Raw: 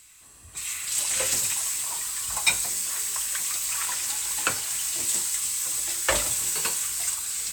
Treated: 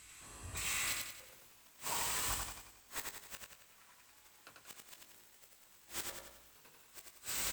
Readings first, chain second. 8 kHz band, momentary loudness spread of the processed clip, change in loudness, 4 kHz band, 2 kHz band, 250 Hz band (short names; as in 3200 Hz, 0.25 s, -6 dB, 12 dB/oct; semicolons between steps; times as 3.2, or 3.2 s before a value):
-20.0 dB, 23 LU, -15.0 dB, -14.5 dB, -13.5 dB, -11.5 dB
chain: self-modulated delay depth 0.2 ms; high shelf 3700 Hz -10.5 dB; flipped gate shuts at -28 dBFS, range -29 dB; doubler 20 ms -9 dB; on a send: feedback echo 91 ms, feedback 47%, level -3 dB; on the sum: gain +2 dB